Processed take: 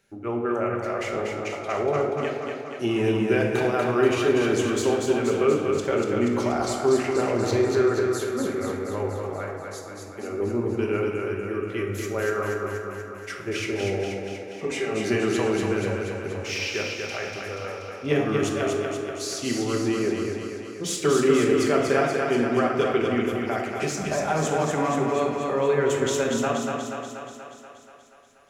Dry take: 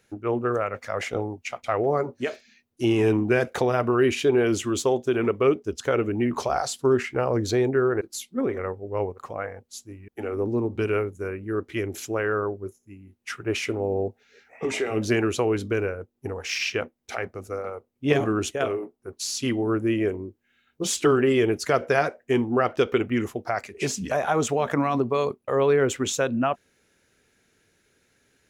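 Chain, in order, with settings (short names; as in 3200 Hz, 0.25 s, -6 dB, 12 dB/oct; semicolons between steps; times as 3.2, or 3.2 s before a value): on a send: thinning echo 0.24 s, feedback 65%, high-pass 180 Hz, level -4 dB; on the sum: shoebox room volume 670 m³, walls mixed, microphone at 1.2 m; gain -4 dB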